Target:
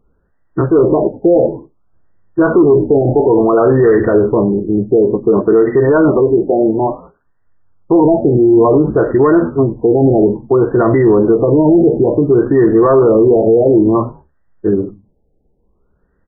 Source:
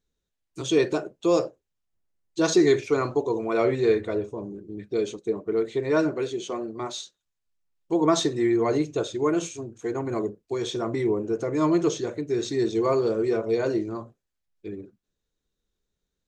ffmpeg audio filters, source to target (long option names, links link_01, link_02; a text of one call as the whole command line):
ffmpeg -i in.wav -filter_complex "[0:a]equalizer=frequency=3300:width=0.72:gain=10.5,bandreject=frequency=1700:width=20,asplit=2[link_01][link_02];[link_02]adelay=15,volume=-12dB[link_03];[link_01][link_03]amix=inputs=2:normalize=0,asplit=3[link_04][link_05][link_06];[link_05]adelay=97,afreqshift=-95,volume=-22dB[link_07];[link_06]adelay=194,afreqshift=-190,volume=-31.6dB[link_08];[link_04][link_07][link_08]amix=inputs=3:normalize=0,asoftclip=type=tanh:threshold=-13.5dB,aemphasis=mode=reproduction:type=75fm,alimiter=level_in=23.5dB:limit=-1dB:release=50:level=0:latency=1,afftfilt=real='re*lt(b*sr/1024,850*pow(2000/850,0.5+0.5*sin(2*PI*0.57*pts/sr)))':imag='im*lt(b*sr/1024,850*pow(2000/850,0.5+0.5*sin(2*PI*0.57*pts/sr)))':win_size=1024:overlap=0.75,volume=-2dB" out.wav